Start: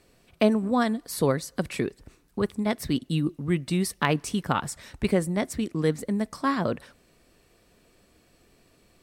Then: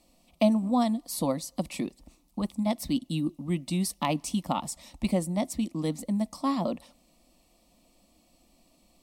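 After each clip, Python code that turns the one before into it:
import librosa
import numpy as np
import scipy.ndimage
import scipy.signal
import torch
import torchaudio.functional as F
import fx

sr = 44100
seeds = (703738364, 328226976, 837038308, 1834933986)

y = fx.fixed_phaser(x, sr, hz=420.0, stages=6)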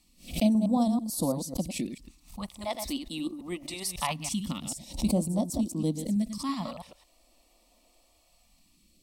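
y = fx.reverse_delay(x, sr, ms=110, wet_db=-7.5)
y = fx.phaser_stages(y, sr, stages=2, low_hz=130.0, high_hz=2100.0, hz=0.23, feedback_pct=15)
y = fx.pre_swell(y, sr, db_per_s=150.0)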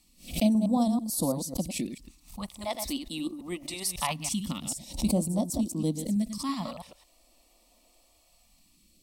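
y = fx.high_shelf(x, sr, hz=6300.0, db=4.0)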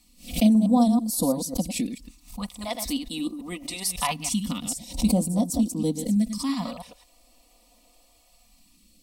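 y = x + 0.55 * np.pad(x, (int(4.1 * sr / 1000.0), 0))[:len(x)]
y = y * 10.0 ** (2.5 / 20.0)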